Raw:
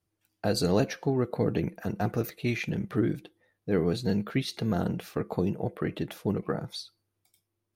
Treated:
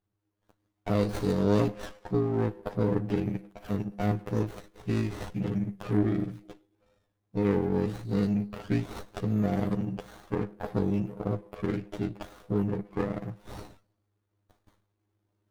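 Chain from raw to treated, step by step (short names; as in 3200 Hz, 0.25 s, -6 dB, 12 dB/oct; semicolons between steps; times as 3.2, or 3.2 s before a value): recorder AGC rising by 6.4 dB/s; granular stretch 2×, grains 39 ms; running maximum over 17 samples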